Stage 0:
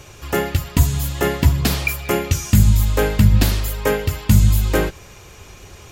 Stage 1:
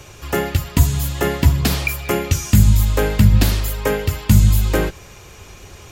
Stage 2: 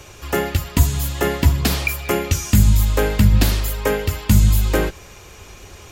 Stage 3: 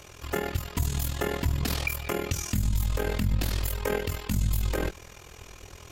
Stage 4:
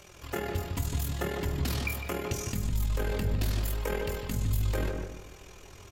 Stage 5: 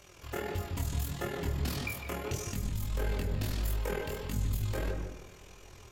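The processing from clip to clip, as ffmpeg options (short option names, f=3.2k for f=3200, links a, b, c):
-filter_complex "[0:a]acrossover=split=240[a][b];[b]acompressor=threshold=-16dB:ratio=6[c];[a][c]amix=inputs=2:normalize=0,volume=1dB"
-af "equalizer=f=130:w=1.8:g=-4.5"
-af "tremolo=f=41:d=0.824,alimiter=limit=-14dB:level=0:latency=1:release=73,volume=-2.5dB"
-filter_complex "[0:a]flanger=delay=5.1:depth=6.3:regen=60:speed=0.74:shape=sinusoidal,asplit=2[a][b];[b]adelay=156,lowpass=f=1.2k:p=1,volume=-3dB,asplit=2[c][d];[d]adelay=156,lowpass=f=1.2k:p=1,volume=0.39,asplit=2[e][f];[f]adelay=156,lowpass=f=1.2k:p=1,volume=0.39,asplit=2[g][h];[h]adelay=156,lowpass=f=1.2k:p=1,volume=0.39,asplit=2[i][j];[j]adelay=156,lowpass=f=1.2k:p=1,volume=0.39[k];[a][c][e][g][i][k]amix=inputs=6:normalize=0"
-af "flanger=delay=20:depth=7.6:speed=1.6"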